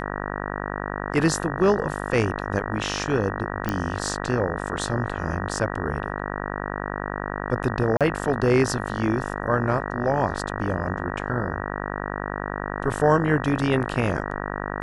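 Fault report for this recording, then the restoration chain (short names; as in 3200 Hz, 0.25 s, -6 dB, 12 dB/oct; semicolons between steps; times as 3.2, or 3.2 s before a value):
buzz 50 Hz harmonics 38 -30 dBFS
3.69 pop -11 dBFS
7.97–8.01 gap 37 ms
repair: de-click; de-hum 50 Hz, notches 38; interpolate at 7.97, 37 ms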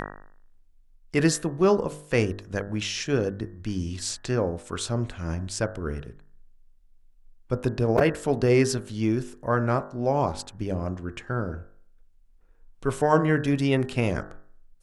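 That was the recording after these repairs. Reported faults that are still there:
none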